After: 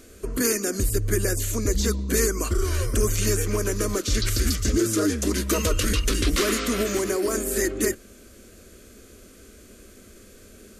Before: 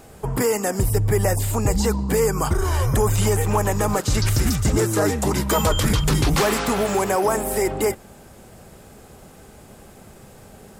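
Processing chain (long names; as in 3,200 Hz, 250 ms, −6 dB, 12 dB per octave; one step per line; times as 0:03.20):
phaser with its sweep stopped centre 350 Hz, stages 4
formants moved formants −2 semitones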